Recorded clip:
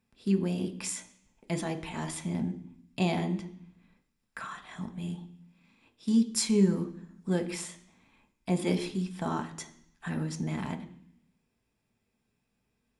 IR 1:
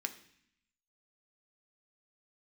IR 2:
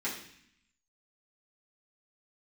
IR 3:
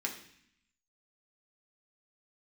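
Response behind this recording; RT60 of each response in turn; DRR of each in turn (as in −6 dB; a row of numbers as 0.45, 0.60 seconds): 1; 0.65, 0.60, 0.60 seconds; 6.0, −9.5, −1.0 decibels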